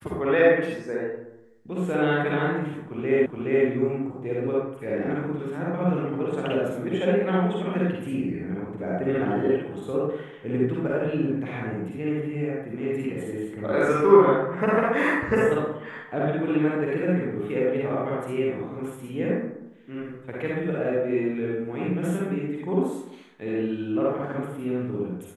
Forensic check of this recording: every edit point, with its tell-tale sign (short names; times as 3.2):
3.26 repeat of the last 0.42 s